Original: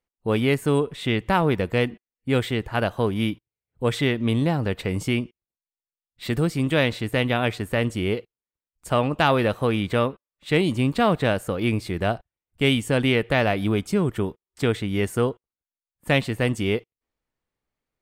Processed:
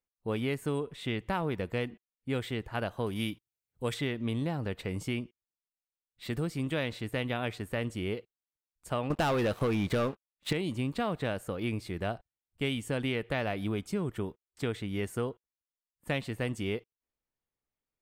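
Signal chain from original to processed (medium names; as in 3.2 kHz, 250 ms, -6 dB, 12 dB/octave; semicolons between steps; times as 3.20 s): 3.06–3.94 s: treble shelf 3.2 kHz +10 dB; 9.10–10.53 s: waveshaping leveller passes 3; compression, threshold -17 dBFS, peak gain reduction 7 dB; trim -9 dB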